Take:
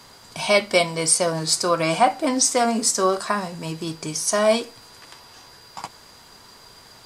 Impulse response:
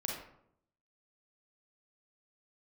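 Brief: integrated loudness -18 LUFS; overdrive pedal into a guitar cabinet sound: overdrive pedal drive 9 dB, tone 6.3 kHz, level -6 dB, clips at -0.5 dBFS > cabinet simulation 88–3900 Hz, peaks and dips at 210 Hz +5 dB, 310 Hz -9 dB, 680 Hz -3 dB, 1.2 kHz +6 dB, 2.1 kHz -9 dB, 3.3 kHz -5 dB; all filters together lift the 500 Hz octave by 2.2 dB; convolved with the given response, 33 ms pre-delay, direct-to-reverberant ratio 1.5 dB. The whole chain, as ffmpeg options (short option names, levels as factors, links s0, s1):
-filter_complex "[0:a]equalizer=f=500:t=o:g=5,asplit=2[s0][s1];[1:a]atrim=start_sample=2205,adelay=33[s2];[s1][s2]afir=irnorm=-1:irlink=0,volume=0.668[s3];[s0][s3]amix=inputs=2:normalize=0,asplit=2[s4][s5];[s5]highpass=f=720:p=1,volume=2.82,asoftclip=type=tanh:threshold=0.944[s6];[s4][s6]amix=inputs=2:normalize=0,lowpass=f=6300:p=1,volume=0.501,highpass=88,equalizer=f=210:t=q:w=4:g=5,equalizer=f=310:t=q:w=4:g=-9,equalizer=f=680:t=q:w=4:g=-3,equalizer=f=1200:t=q:w=4:g=6,equalizer=f=2100:t=q:w=4:g=-9,equalizer=f=3300:t=q:w=4:g=-5,lowpass=f=3900:w=0.5412,lowpass=f=3900:w=1.3066,volume=0.841"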